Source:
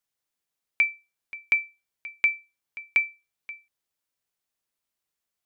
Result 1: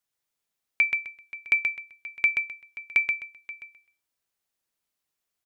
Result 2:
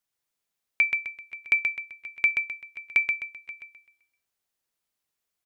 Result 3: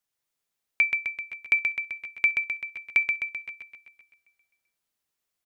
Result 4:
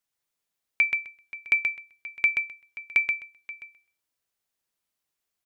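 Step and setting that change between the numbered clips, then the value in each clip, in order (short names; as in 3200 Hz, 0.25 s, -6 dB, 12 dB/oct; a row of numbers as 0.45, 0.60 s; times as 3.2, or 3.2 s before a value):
feedback echo, feedback: 23, 36, 60, 15%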